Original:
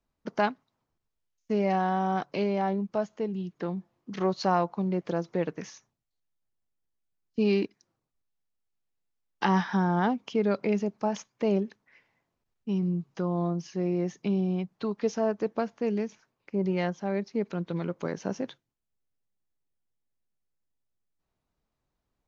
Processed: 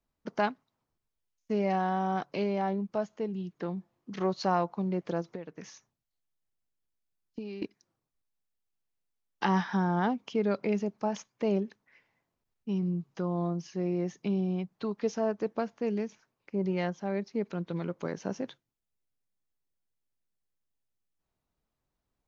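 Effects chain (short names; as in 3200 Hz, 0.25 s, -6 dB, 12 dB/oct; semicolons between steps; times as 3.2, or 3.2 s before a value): 5.21–7.62 compressor 16:1, threshold -34 dBFS, peak gain reduction 14 dB; gain -2.5 dB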